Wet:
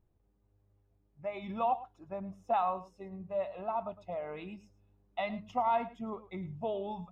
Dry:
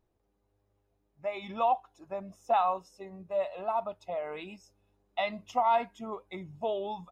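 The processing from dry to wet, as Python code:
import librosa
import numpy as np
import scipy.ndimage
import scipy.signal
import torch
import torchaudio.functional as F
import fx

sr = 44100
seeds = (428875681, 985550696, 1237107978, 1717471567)

y = fx.bass_treble(x, sr, bass_db=10, treble_db=-10)
y = y + 10.0 ** (-16.5 / 20.0) * np.pad(y, (int(108 * sr / 1000.0), 0))[:len(y)]
y = y * 10.0 ** (-4.0 / 20.0)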